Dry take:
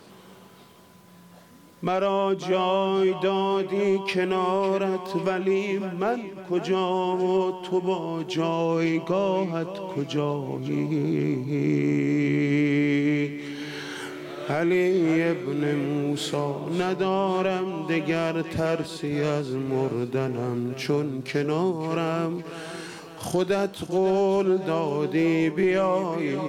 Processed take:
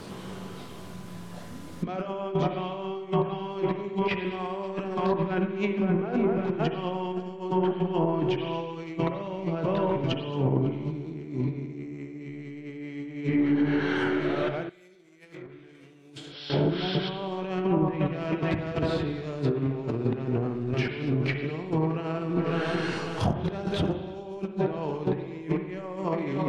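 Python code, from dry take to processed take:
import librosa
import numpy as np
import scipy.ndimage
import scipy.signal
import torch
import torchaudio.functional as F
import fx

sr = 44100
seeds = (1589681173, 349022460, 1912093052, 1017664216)

y = fx.low_shelf(x, sr, hz=150.0, db=11.0)
y = fx.echo_feedback(y, sr, ms=223, feedback_pct=44, wet_db=-16.0)
y = fx.over_compress(y, sr, threshold_db=-28.0, ratio=-0.5)
y = fx.spec_repair(y, sr, seeds[0], start_s=16.22, length_s=0.84, low_hz=960.0, high_hz=5800.0, source='before')
y = fx.rev_spring(y, sr, rt60_s=1.2, pass_ms=(44, 59), chirp_ms=55, drr_db=7.0)
y = fx.env_lowpass_down(y, sr, base_hz=730.0, full_db=-17.5)
y = fx.pre_emphasis(y, sr, coefficient=0.9, at=(14.69, 16.5))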